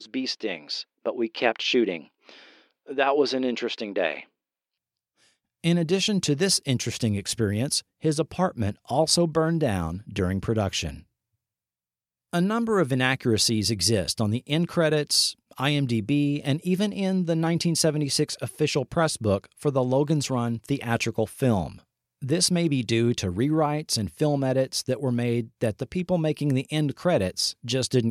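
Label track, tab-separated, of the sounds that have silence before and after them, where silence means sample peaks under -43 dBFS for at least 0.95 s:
5.640000	11.000000	sound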